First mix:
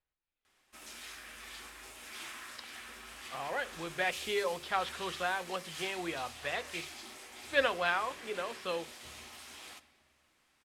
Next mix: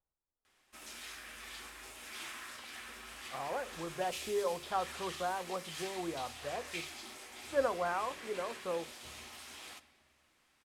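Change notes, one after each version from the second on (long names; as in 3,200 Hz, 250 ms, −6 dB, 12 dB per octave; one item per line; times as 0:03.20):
speech: add low-pass filter 1,200 Hz 24 dB per octave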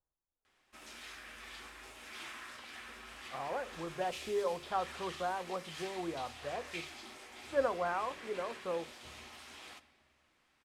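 master: add high-shelf EQ 6,700 Hz −10.5 dB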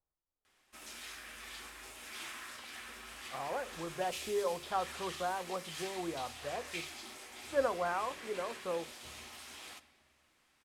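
master: add high-shelf EQ 6,700 Hz +10.5 dB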